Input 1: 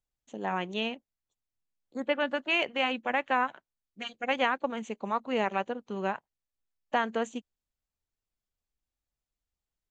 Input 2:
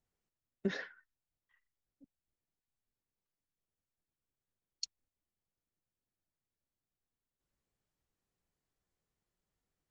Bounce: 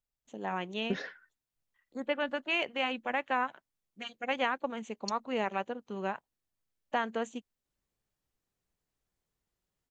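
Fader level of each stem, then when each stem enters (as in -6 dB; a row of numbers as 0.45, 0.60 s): -3.5, +1.0 dB; 0.00, 0.25 s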